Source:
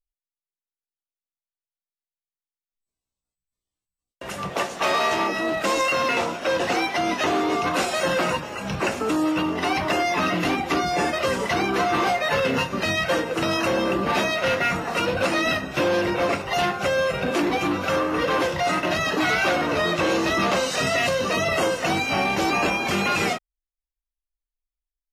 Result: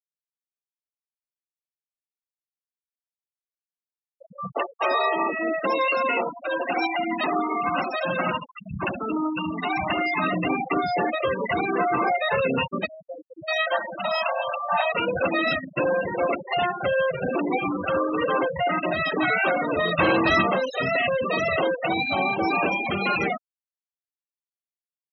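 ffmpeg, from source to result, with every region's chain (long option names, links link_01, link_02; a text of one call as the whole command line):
ffmpeg -i in.wav -filter_complex "[0:a]asettb=1/sr,asplit=3[link_01][link_02][link_03];[link_01]atrim=end=6.294[link_04];[link_02]atrim=start=6.29:end=10.25,asetpts=PTS-STARTPTS,afade=type=in:duration=0.004:curve=qsin,afade=type=out:start_time=3.956:duration=0.004:curve=qsin,equalizer=frequency=460:width=1.8:gain=-7,asplit=2[link_05][link_06];[link_06]adelay=73,lowpass=frequency=3000:poles=1,volume=-5.5dB,asplit=2[link_07][link_08];[link_08]adelay=73,lowpass=frequency=3000:poles=1,volume=0.5,asplit=2[link_09][link_10];[link_10]adelay=73,lowpass=frequency=3000:poles=1,volume=0.5,asplit=2[link_11][link_12];[link_12]adelay=73,lowpass=frequency=3000:poles=1,volume=0.5,asplit=2[link_13][link_14];[link_14]adelay=73,lowpass=frequency=3000:poles=1,volume=0.5,asplit=2[link_15][link_16];[link_16]adelay=73,lowpass=frequency=3000:poles=1,volume=0.5[link_17];[link_05][link_07][link_09][link_11][link_13][link_15][link_17]amix=inputs=7:normalize=0,atrim=end_sample=174636[link_18];[link_03]atrim=start=10.246[link_19];[link_04][link_18]acrossfade=duration=0.004:curve1=hsin:curve2=qsin[link_20];[link_20][link_19]acrossfade=duration=0.004:curve1=qsin:curve2=hsin,asettb=1/sr,asplit=3[link_21][link_22][link_23];[link_21]atrim=end=12.864[link_24];[link_22]atrim=start=12.86:end=14.92,asetpts=PTS-STARTPTS,afade=type=in:duration=0.004:curve=qsin,afade=type=out:start_time=2.056:duration=0.004:curve=qsin,lowshelf=frequency=530:width_type=q:width=3:gain=-6.5,acrossover=split=480[link_25][link_26];[link_26]adelay=620[link_27];[link_25][link_27]amix=inputs=2:normalize=0,atrim=end_sample=90846[link_28];[link_23]atrim=start=14.916[link_29];[link_24][link_28]acrossfade=duration=0.004:curve1=hsin:curve2=qsin[link_30];[link_30][link_29]acrossfade=duration=0.004:curve1=qsin:curve2=hsin,asettb=1/sr,asplit=3[link_31][link_32][link_33];[link_31]atrim=end=19.974[link_34];[link_32]atrim=start=19.97:end=20.42,asetpts=PTS-STARTPTS,afade=type=in:duration=0.004:curve=qsin,afade=type=out:start_time=0.446:duration=0.004:curve=qsin,lowpass=6200,equalizer=frequency=430:width=1.6:gain=-6,acontrast=30[link_35];[link_33]atrim=start=20.416[link_36];[link_34][link_35]acrossfade=duration=0.004:curve1=hsin:curve2=qsin[link_37];[link_37][link_36]acrossfade=duration=0.004:curve1=qsin:curve2=hsin,asettb=1/sr,asplit=3[link_38][link_39][link_40];[link_38]atrim=end=21.504[link_41];[link_39]atrim=start=21.5:end=22.46,asetpts=PTS-STARTPTS,afade=type=in:duration=0.004:curve=qsin,afade=type=out:start_time=0.956:duration=0.004:curve=qsin,equalizer=frequency=3900:width_type=o:width=0.4:gain=2,bandreject=frequency=60:width_type=h:width=6,bandreject=frequency=120:width_type=h:width=6,bandreject=frequency=180:width_type=h:width=6,bandreject=frequency=240:width_type=h:width=6,bandreject=frequency=300:width_type=h:width=6,bandreject=frequency=360:width_type=h:width=6,bandreject=frequency=420:width_type=h:width=6[link_42];[link_40]atrim=start=22.456[link_43];[link_41][link_42]acrossfade=duration=0.004:curve1=hsin:curve2=qsin[link_44];[link_44][link_43]acrossfade=duration=0.004:curve1=qsin:curve2=hsin,bandreject=frequency=50:width_type=h:width=6,bandreject=frequency=100:width_type=h:width=6,bandreject=frequency=150:width_type=h:width=6,bandreject=frequency=200:width_type=h:width=6,bandreject=frequency=250:width_type=h:width=6,bandreject=frequency=300:width_type=h:width=6,bandreject=frequency=350:width_type=h:width=6,afftfilt=real='re*gte(hypot(re,im),0.126)':imag='im*gte(hypot(re,im),0.126)':win_size=1024:overlap=0.75" out.wav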